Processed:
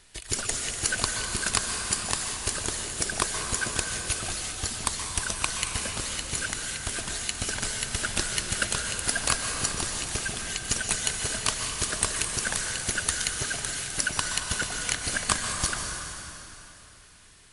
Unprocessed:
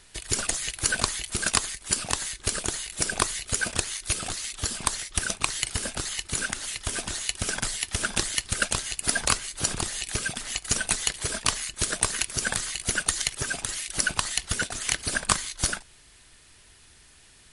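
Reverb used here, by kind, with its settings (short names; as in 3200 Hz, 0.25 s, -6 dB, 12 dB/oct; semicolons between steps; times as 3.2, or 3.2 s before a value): plate-style reverb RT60 3.2 s, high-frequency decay 0.9×, pre-delay 0.115 s, DRR 2.5 dB; gain -2.5 dB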